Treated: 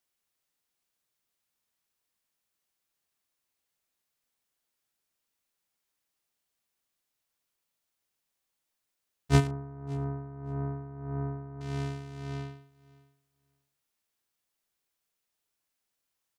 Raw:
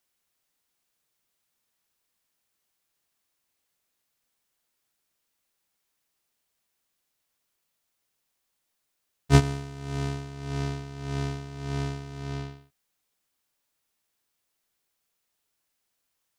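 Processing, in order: 9.47–11.61 s: inverse Chebyshev low-pass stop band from 3.4 kHz, stop band 50 dB; doubling 36 ms -12.5 dB; feedback delay 570 ms, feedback 16%, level -23.5 dB; trim -5 dB

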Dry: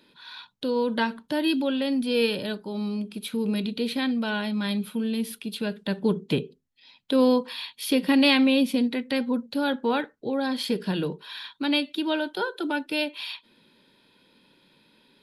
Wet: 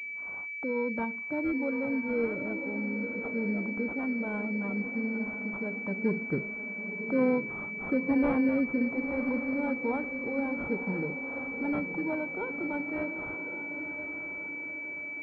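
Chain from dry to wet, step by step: spectral gate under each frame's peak -25 dB strong; echo that smears into a reverb 1003 ms, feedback 50%, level -8 dB; class-D stage that switches slowly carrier 2.3 kHz; trim -6 dB

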